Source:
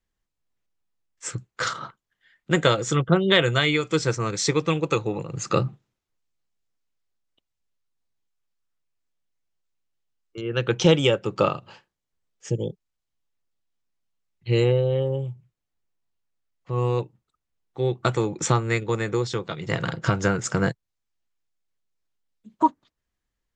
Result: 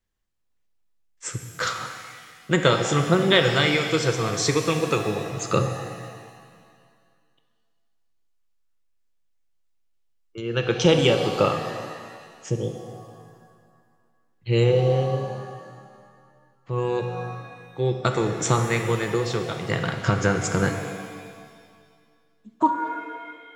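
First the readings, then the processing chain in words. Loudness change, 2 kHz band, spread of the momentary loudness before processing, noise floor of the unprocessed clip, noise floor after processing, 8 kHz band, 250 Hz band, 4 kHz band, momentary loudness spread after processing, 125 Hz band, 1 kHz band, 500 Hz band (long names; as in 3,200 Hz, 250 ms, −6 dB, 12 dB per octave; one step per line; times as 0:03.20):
+0.5 dB, +1.5 dB, 15 LU, −83 dBFS, −66 dBFS, +1.0 dB, +0.5 dB, +1.5 dB, 19 LU, +0.5 dB, +1.5 dB, +1.0 dB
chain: reverb with rising layers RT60 1.9 s, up +7 semitones, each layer −8 dB, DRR 5 dB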